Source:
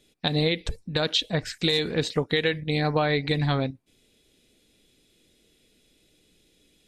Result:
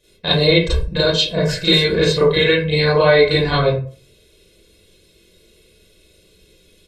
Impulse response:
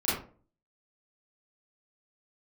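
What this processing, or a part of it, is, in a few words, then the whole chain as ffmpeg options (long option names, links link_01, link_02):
microphone above a desk: -filter_complex "[0:a]aecho=1:1:1.9:0.84[link_01];[1:a]atrim=start_sample=2205[link_02];[link_01][link_02]afir=irnorm=-1:irlink=0,asettb=1/sr,asplit=3[link_03][link_04][link_05];[link_03]atrim=end=1.004[link_06];[link_04]atrim=start=1:end=1.49,asetpts=PTS-STARTPTS,afade=type=in:duration=0.004:curve=qsin,afade=type=out:start_time=0.486:duration=0.004:curve=qsin,equalizer=frequency=2100:width_type=o:width=2.2:gain=-5.5[link_07];[link_05]atrim=start=1.486[link_08];[link_06][link_07]acrossfade=duration=0.004:curve1=hsin:curve2=qsin[link_09];[link_09][link_08]acrossfade=duration=0.004:curve1=qsin:curve2=hsin,volume=-1dB"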